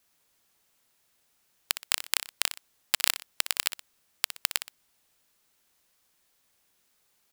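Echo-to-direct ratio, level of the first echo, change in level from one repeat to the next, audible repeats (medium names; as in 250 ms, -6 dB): -11.0 dB, -11.5 dB, -9.5 dB, 2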